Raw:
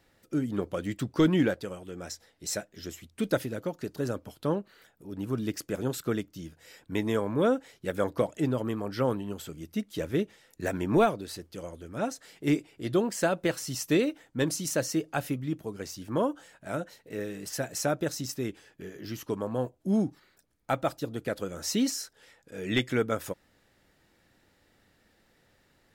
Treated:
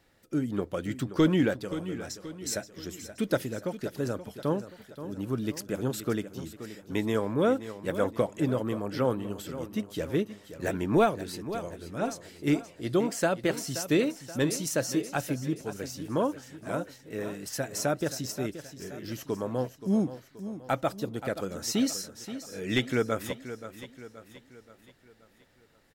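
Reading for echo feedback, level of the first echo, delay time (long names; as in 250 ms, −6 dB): 48%, −12.5 dB, 527 ms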